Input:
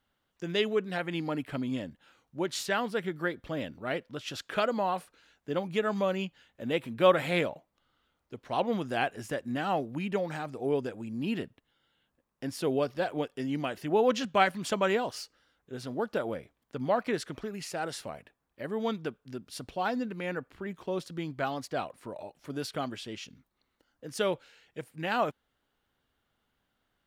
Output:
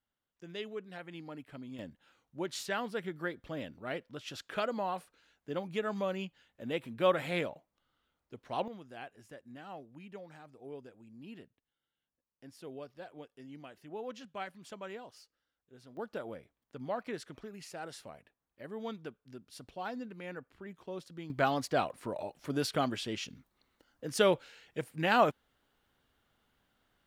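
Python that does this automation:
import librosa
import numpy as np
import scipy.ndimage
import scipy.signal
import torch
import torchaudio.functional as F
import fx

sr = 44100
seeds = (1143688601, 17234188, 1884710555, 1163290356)

y = fx.gain(x, sr, db=fx.steps((0.0, -13.0), (1.79, -5.5), (8.68, -17.0), (15.97, -9.0), (21.3, 3.0)))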